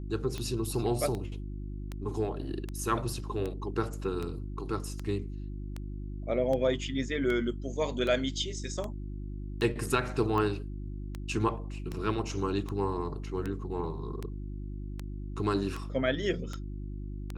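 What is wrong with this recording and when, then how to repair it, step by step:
hum 50 Hz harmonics 7 -38 dBFS
tick 78 rpm -22 dBFS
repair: de-click; de-hum 50 Hz, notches 7

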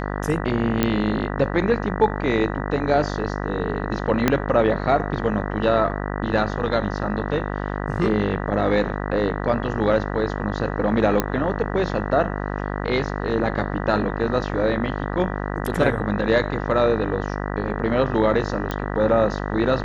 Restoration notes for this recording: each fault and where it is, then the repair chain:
buzz 50 Hz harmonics 39 -27 dBFS
0.83 s: pop -6 dBFS
4.28 s: pop -3 dBFS
11.20 s: pop -5 dBFS
18.71 s: pop -13 dBFS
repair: de-click; de-hum 50 Hz, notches 39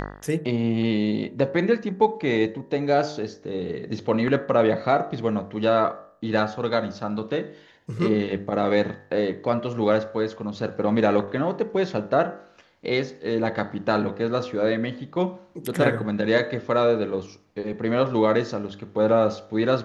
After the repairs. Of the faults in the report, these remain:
4.28 s: pop

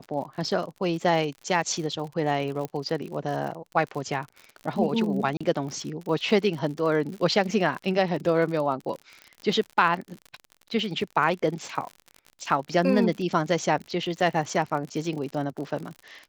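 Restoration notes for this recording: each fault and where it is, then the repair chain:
crackle 52 per s -33 dBFS
2.65 s: pop -18 dBFS
5.37–5.41 s: dropout 35 ms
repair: de-click; interpolate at 5.37 s, 35 ms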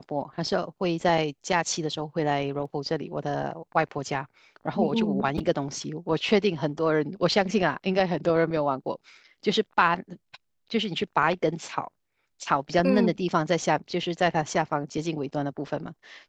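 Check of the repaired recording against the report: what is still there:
2.65 s: pop

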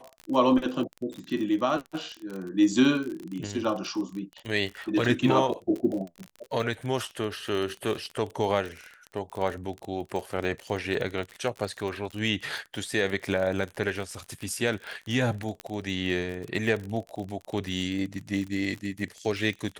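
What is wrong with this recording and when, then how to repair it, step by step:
crackle 38 per s -32 dBFS
15.60 s: pop -20 dBFS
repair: de-click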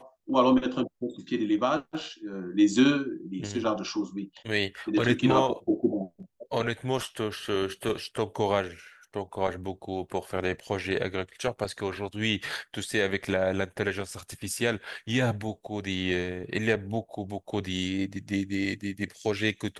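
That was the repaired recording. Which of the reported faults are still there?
nothing left

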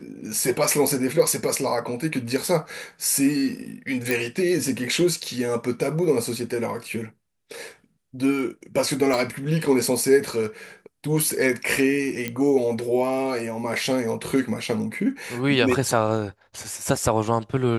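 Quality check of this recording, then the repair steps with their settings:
4.11 s: pop
9.14 s: pop
12.28 s: pop -12 dBFS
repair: de-click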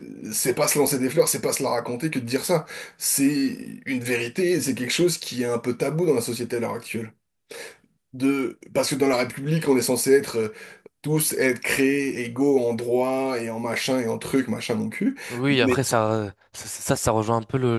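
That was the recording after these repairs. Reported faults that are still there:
4.11 s: pop
9.14 s: pop

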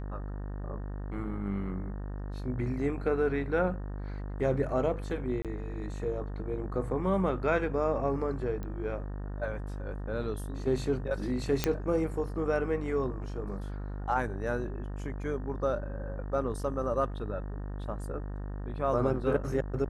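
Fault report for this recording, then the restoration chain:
buzz 50 Hz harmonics 37 -37 dBFS
5.42–5.45 s: dropout 27 ms
8.63 s: pop -26 dBFS
11.64 s: pop -10 dBFS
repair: de-click; de-hum 50 Hz, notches 37; interpolate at 5.42 s, 27 ms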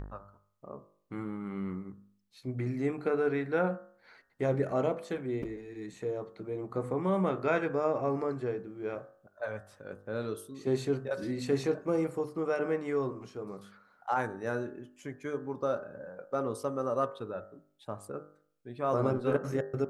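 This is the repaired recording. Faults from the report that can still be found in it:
nothing left

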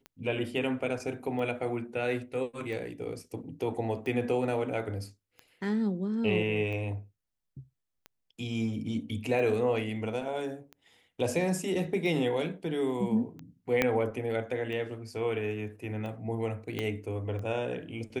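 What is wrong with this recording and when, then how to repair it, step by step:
tick 45 rpm -29 dBFS
13.82 s: pop -11 dBFS
16.79 s: pop -18 dBFS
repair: de-click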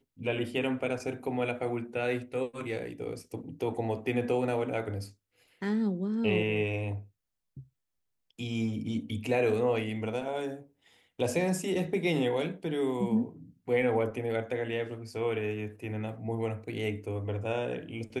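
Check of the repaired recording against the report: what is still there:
13.82 s: pop
16.79 s: pop

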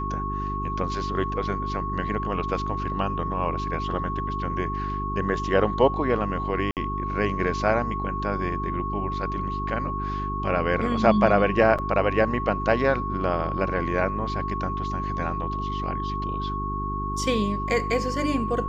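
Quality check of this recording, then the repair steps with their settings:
hum 50 Hz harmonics 8 -31 dBFS
whine 1.1 kHz -29 dBFS
6.71–6.77 s: dropout 58 ms
11.78–11.79 s: dropout 6.6 ms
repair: de-hum 50 Hz, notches 8; band-stop 1.1 kHz, Q 30; interpolate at 6.71 s, 58 ms; interpolate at 11.78 s, 6.6 ms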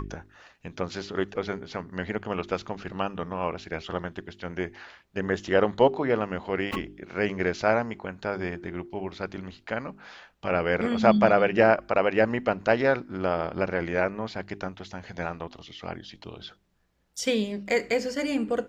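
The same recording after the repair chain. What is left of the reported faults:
nothing left

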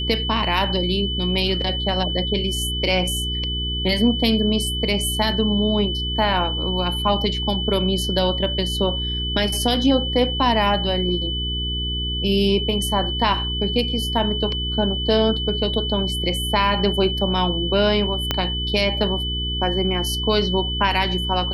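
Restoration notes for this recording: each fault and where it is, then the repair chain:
hum 60 Hz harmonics 7 -27 dBFS
whine 3 kHz -25 dBFS
18.31 s: pop -5 dBFS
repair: de-click; de-hum 60 Hz, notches 7; band-stop 3 kHz, Q 30

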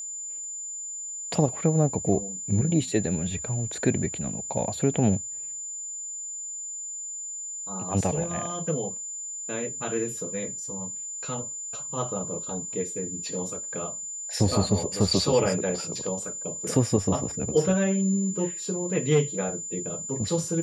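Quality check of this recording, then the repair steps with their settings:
whine 7.1 kHz -33 dBFS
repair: band-stop 7.1 kHz, Q 30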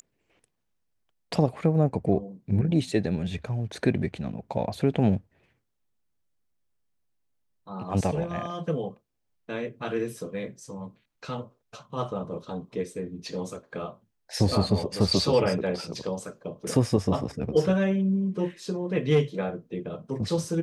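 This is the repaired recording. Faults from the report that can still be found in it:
nothing left

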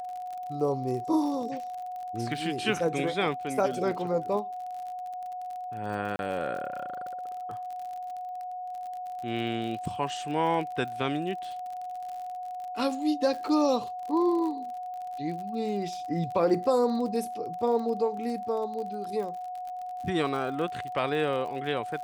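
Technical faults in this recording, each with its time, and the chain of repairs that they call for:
crackle 47 per s -36 dBFS
whine 730 Hz -34 dBFS
6.16–6.19 s: dropout 31 ms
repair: de-click; band-stop 730 Hz, Q 30; interpolate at 6.16 s, 31 ms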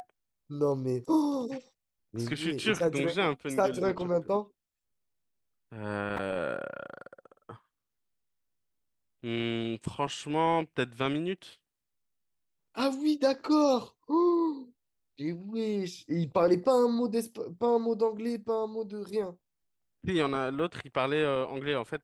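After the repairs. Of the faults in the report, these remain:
nothing left

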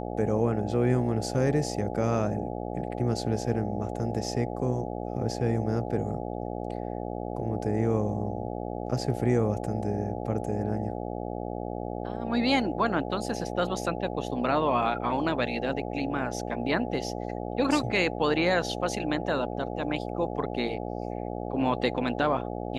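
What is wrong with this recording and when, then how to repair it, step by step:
buzz 60 Hz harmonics 14 -34 dBFS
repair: de-hum 60 Hz, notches 14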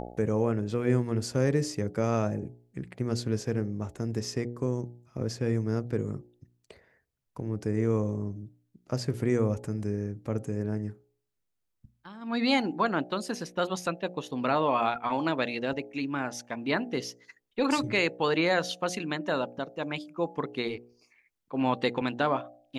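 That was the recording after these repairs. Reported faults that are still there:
nothing left

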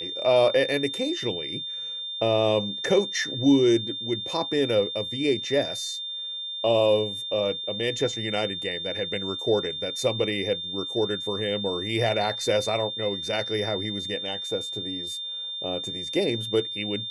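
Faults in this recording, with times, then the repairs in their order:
whine 3.6 kHz -31 dBFS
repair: band-stop 3.6 kHz, Q 30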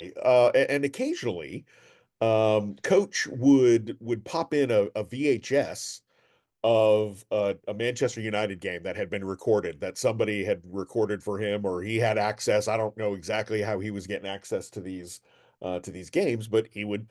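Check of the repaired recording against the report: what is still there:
nothing left

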